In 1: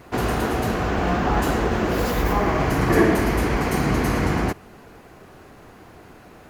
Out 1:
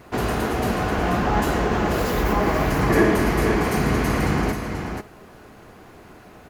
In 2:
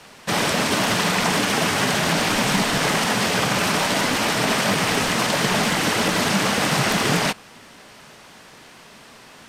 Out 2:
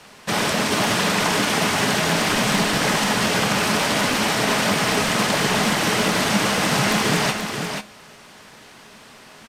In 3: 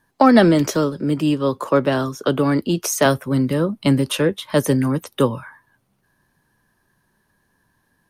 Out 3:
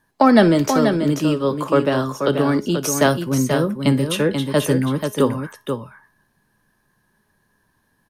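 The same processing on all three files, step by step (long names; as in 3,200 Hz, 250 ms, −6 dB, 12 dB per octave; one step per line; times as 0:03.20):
tuned comb filter 210 Hz, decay 0.3 s, harmonics all, mix 50%
on a send: multi-tap delay 60/485 ms −19.5/−6.5 dB
on the sum: level +4.5 dB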